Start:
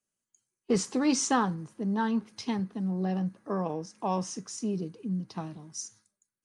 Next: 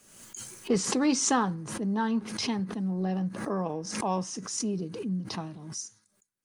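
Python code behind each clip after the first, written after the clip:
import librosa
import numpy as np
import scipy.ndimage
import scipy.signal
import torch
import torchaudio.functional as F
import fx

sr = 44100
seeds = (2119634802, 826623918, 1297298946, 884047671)

y = fx.pre_swell(x, sr, db_per_s=55.0)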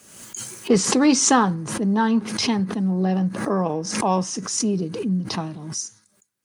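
y = scipy.signal.sosfilt(scipy.signal.butter(2, 44.0, 'highpass', fs=sr, output='sos'), x)
y = F.gain(torch.from_numpy(y), 8.5).numpy()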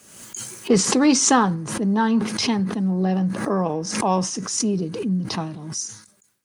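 y = fx.sustainer(x, sr, db_per_s=100.0)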